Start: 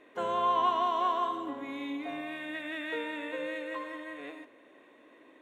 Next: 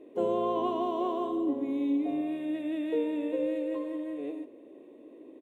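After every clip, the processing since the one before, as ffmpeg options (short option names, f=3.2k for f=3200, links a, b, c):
-af "firequalizer=gain_entry='entry(120,0);entry(360,8);entry(720,-5);entry(1500,-22);entry(2600,-11);entry(5000,-14);entry(9700,-6)':delay=0.05:min_phase=1,volume=4dB"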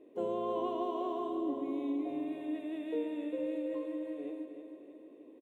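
-af "aecho=1:1:313|626|939|1252|1565|1878:0.376|0.195|0.102|0.0528|0.0275|0.0143,volume=-6.5dB"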